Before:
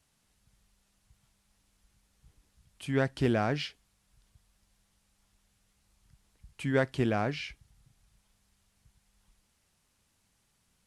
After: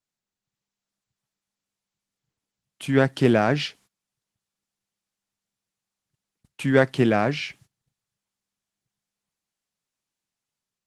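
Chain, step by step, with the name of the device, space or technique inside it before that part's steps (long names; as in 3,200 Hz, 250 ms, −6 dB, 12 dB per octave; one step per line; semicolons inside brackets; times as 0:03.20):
video call (high-pass filter 120 Hz 24 dB per octave; automatic gain control gain up to 7 dB; noise gate −53 dBFS, range −23 dB; level +2.5 dB; Opus 16 kbit/s 48,000 Hz)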